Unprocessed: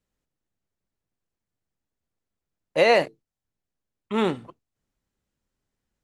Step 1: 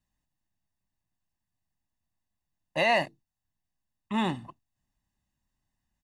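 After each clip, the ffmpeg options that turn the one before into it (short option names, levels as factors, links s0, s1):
-filter_complex "[0:a]aecho=1:1:1.1:0.81,asplit=2[s0][s1];[s1]alimiter=limit=0.15:level=0:latency=1:release=99,volume=0.891[s2];[s0][s2]amix=inputs=2:normalize=0,volume=0.355"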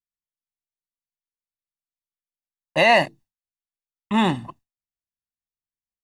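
-af "agate=range=0.0224:threshold=0.00282:ratio=3:detection=peak,volume=2.66"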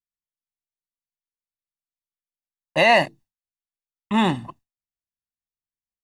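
-af anull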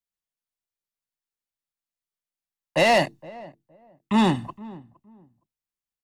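-filter_complex "[0:a]acrossover=split=260|620|4200[s0][s1][s2][s3];[s2]asoftclip=type=tanh:threshold=0.0891[s4];[s0][s1][s4][s3]amix=inputs=4:normalize=0,asplit=2[s5][s6];[s6]adelay=465,lowpass=f=830:p=1,volume=0.112,asplit=2[s7][s8];[s8]adelay=465,lowpass=f=830:p=1,volume=0.23[s9];[s5][s7][s9]amix=inputs=3:normalize=0,volume=1.12"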